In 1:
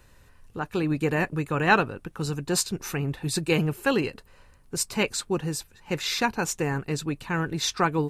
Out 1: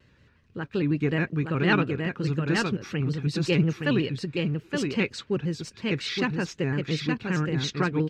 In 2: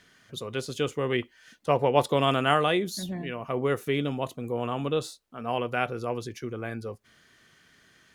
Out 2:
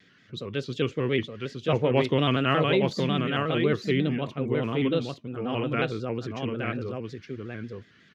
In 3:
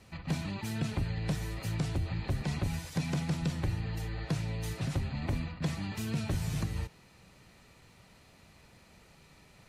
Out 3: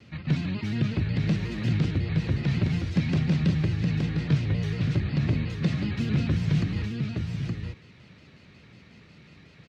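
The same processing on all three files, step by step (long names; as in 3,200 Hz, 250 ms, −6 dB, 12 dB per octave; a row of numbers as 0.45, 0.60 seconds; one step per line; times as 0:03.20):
high-pass filter 100 Hz 12 dB per octave
parametric band 820 Hz −12.5 dB 1.4 octaves
in parallel at −5 dB: asymmetric clip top −22.5 dBFS
on the sum: high-frequency loss of the air 210 metres
on a send: single-tap delay 867 ms −4 dB
on the sum: pitch modulation by a square or saw wave square 5.5 Hz, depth 100 cents
loudness normalisation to −27 LKFS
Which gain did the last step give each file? −0.5, +2.0, +6.0 decibels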